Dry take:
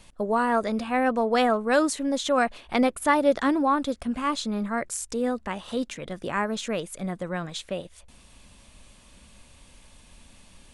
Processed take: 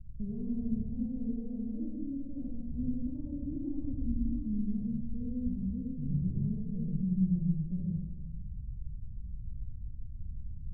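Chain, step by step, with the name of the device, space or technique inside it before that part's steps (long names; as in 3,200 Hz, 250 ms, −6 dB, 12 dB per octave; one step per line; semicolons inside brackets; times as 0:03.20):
club heard from the street (brickwall limiter −16 dBFS, peak gain reduction 7.5 dB; low-pass filter 140 Hz 24 dB per octave; convolution reverb RT60 1.3 s, pre-delay 50 ms, DRR −4 dB)
level +9 dB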